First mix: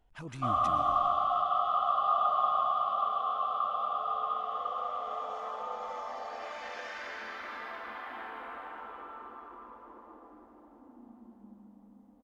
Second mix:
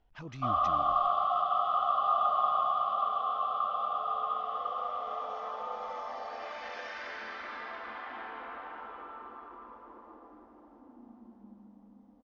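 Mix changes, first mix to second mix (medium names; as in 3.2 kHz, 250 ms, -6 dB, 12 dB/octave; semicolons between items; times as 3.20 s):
speech: send -11.0 dB; master: add steep low-pass 6.1 kHz 48 dB/octave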